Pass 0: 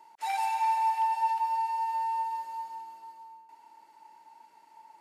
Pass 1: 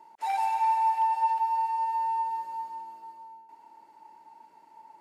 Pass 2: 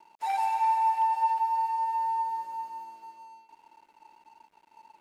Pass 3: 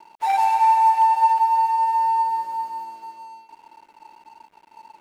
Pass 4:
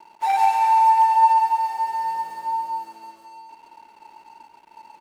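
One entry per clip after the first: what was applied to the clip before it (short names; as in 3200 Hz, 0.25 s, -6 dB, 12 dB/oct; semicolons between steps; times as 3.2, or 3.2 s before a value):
tilt shelf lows +5.5 dB, about 1100 Hz; gain +1 dB
crossover distortion -58.5 dBFS
median filter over 9 samples; gain +9 dB
echo 0.138 s -5 dB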